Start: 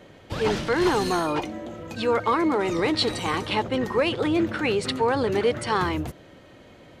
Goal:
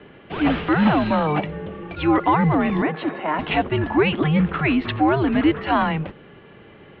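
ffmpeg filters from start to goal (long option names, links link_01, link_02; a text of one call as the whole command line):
ffmpeg -i in.wav -filter_complex "[0:a]highpass=frequency=250:width_type=q:width=0.5412,highpass=frequency=250:width_type=q:width=1.307,lowpass=frequency=3300:width_type=q:width=0.5176,lowpass=frequency=3300:width_type=q:width=0.7071,lowpass=frequency=3300:width_type=q:width=1.932,afreqshift=-150,asettb=1/sr,asplit=3[link_01][link_02][link_03];[link_01]atrim=end=2.824[link_04];[link_02]atrim=start=2.82:end=3.39,asetpts=PTS-STARTPTS,afade=type=in:duration=0.004:curve=qsin,afade=type=out:start_time=0.566:duration=0.004:curve=qsin,acrossover=split=220 2100:gain=0.0708 1 0.126[link_05][link_06][link_07];[link_05][link_06][link_07]amix=inputs=3:normalize=0[link_08];[link_03]atrim=start=3.386[link_09];[link_04][link_08]acrossfade=duration=0.004:curve1=hsin:curve2=qsin[link_10];[link_10][link_09]acrossfade=duration=0.004:curve1=qsin:curve2=hsin,volume=5dB" out.wav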